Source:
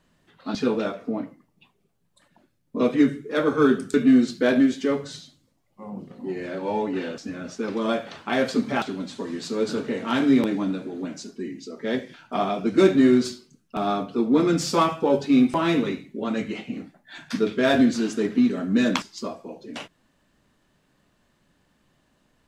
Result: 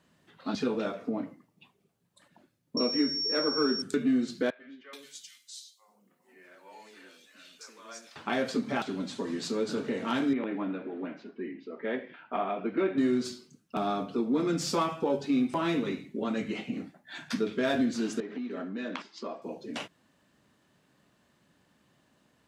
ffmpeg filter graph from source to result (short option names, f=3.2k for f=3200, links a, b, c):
-filter_complex "[0:a]asettb=1/sr,asplit=3[a][b][c];[a]atrim=end=2.774[d];[b]atrim=start=2.77:end=3.82,asetpts=PTS-STARTPTS,afade=t=in:d=0.004:c=qsin,afade=t=out:st=1.046:d=0.004:c=qsin,highpass=f=180:w=0.5412,highpass=f=180:w=1.3066,bandreject=f=3.4k:w=5.3,aeval=exprs='val(0)+0.0708*sin(2*PI*5500*n/s)':c=same[e];[c]atrim=start=3.816[f];[d][e]acrossfade=d=0.004:c1=hsin:c2=qsin[g];[g][f]acrossfade=d=0.004:c1=qsin:c2=hsin,asettb=1/sr,asplit=3[h][i][j];[h]atrim=end=4.504[k];[i]atrim=start=4.5:end=8.16,asetpts=PTS-STARTPTS,afade=t=in:d=0.004:c=qsin,afade=t=out:st=3.656:d=0.004:c=qsin,aderivative,bandreject=f=820:w=17,acrossover=split=450|2400[l][m][n];[l]adelay=90[o];[n]adelay=430[p];[o][m][p]amix=inputs=3:normalize=0,atrim=end_sample=161406[q];[j]atrim=start=8.156[r];[k][q]acrossfade=d=0.004:c1=hsin:c2=qsin[s];[s][r]acrossfade=d=0.004:c1=qsin:c2=hsin,asettb=1/sr,asplit=3[t][u][v];[t]atrim=end=10.334[w];[u]atrim=start=10.33:end=12.98,asetpts=PTS-STARTPTS,afade=t=in:d=0.004:c=qsin,afade=t=out:st=2.646:d=0.004:c=qsin,lowpass=f=2.7k:w=0.5412,lowpass=f=2.7k:w=1.3066,equalizer=f=100:t=o:w=2:g=-14.5[x];[v]atrim=start=12.976[y];[w][x]acrossfade=d=0.004:c1=hsin:c2=qsin[z];[z][y]acrossfade=d=0.004:c1=qsin:c2=hsin,asettb=1/sr,asplit=3[aa][ab][ac];[aa]atrim=end=18.204[ad];[ab]atrim=start=18.2:end=19.42,asetpts=PTS-STARTPTS,afade=t=in:d=0.004:c=qsin,afade=t=out:st=1.216:d=0.004:c=qsin,acompressor=threshold=-29dB:ratio=4:attack=3.2:release=140:knee=1:detection=peak,highpass=290,lowpass=3.4k[ae];[ac]atrim=start=19.416[af];[ad][ae]acrossfade=d=0.004:c1=hsin:c2=qsin[ag];[ag][af]acrossfade=d=0.004:c1=qsin:c2=hsin,highpass=91,acompressor=threshold=-29dB:ratio=2,volume=-1dB"